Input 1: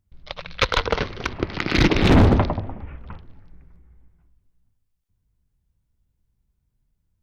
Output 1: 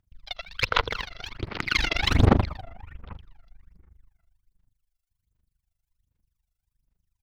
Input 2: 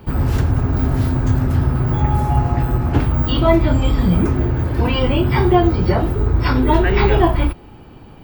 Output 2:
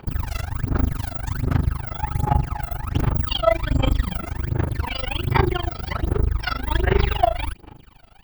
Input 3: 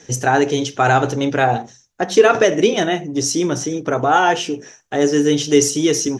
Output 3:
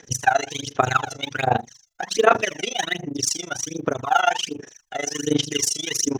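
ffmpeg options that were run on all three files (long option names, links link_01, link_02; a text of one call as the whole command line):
ffmpeg -i in.wav -af "aphaser=in_gain=1:out_gain=1:delay=1.5:decay=0.79:speed=1.3:type=sinusoidal,tremolo=f=25:d=0.947,tiltshelf=frequency=790:gain=-6,volume=-7dB" out.wav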